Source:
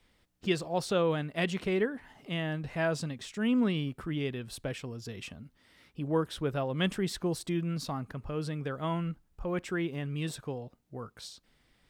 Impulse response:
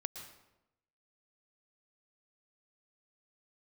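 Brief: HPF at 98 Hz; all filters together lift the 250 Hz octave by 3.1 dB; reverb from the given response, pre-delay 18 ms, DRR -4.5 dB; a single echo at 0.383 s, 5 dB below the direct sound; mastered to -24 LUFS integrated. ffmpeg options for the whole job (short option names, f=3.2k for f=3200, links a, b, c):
-filter_complex "[0:a]highpass=98,equalizer=f=250:t=o:g=4.5,aecho=1:1:383:0.562,asplit=2[a][b];[1:a]atrim=start_sample=2205,adelay=18[c];[b][c]afir=irnorm=-1:irlink=0,volume=5.5dB[d];[a][d]amix=inputs=2:normalize=0,volume=0.5dB"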